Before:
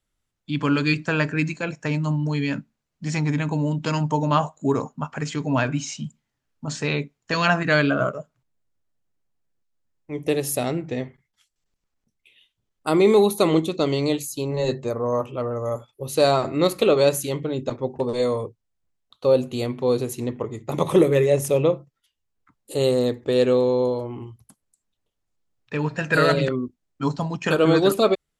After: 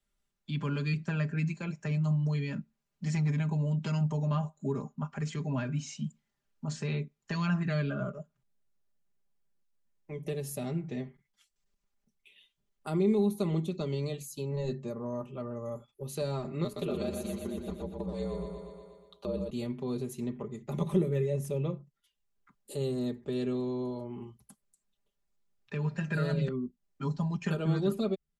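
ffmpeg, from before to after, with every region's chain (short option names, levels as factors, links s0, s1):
-filter_complex "[0:a]asettb=1/sr,asplit=3[s0][s1][s2];[s0]atrim=end=16.644[s3];[s1]atrim=start=16.64:end=19.5,asetpts=PTS-STARTPTS,afade=t=in:d=0.004:c=qsin,afade=t=out:st=2.856:d=0.004:c=qsin,aeval=exprs='val(0)*sin(2*PI*57*n/s)':c=same,aecho=1:1:120|240|360|480|600|720|840:0.531|0.287|0.155|0.0836|0.0451|0.0244|0.0132,atrim=end_sample=126126[s4];[s2]atrim=start=19.496[s5];[s3][s4]acrossfade=d=0.004:c1=hsin:c2=qsin[s6];[s6][s5]acrossfade=d=0.004:c1=qsin:c2=hsin,aecho=1:1:5:0.75,acrossover=split=250[s7][s8];[s8]acompressor=threshold=0.00794:ratio=2[s9];[s7][s9]amix=inputs=2:normalize=0,volume=0.531"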